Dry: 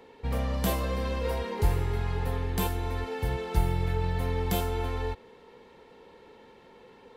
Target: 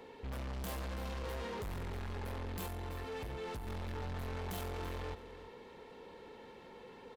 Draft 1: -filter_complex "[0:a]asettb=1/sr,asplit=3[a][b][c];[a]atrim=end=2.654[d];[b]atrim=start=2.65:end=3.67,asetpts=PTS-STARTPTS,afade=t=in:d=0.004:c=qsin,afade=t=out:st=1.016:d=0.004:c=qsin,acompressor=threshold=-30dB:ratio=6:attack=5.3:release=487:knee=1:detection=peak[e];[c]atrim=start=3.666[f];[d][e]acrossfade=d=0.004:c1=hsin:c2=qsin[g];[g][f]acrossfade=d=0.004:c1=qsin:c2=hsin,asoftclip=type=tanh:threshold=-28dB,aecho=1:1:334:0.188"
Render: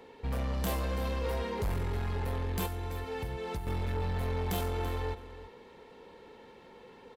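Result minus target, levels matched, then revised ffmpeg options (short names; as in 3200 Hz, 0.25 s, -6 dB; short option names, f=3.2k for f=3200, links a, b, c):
soft clip: distortion -6 dB
-filter_complex "[0:a]asettb=1/sr,asplit=3[a][b][c];[a]atrim=end=2.654[d];[b]atrim=start=2.65:end=3.67,asetpts=PTS-STARTPTS,afade=t=in:d=0.004:c=qsin,afade=t=out:st=1.016:d=0.004:c=qsin,acompressor=threshold=-30dB:ratio=6:attack=5.3:release=487:knee=1:detection=peak[e];[c]atrim=start=3.666[f];[d][e]acrossfade=d=0.004:c1=hsin:c2=qsin[g];[g][f]acrossfade=d=0.004:c1=qsin:c2=hsin,asoftclip=type=tanh:threshold=-39.5dB,aecho=1:1:334:0.188"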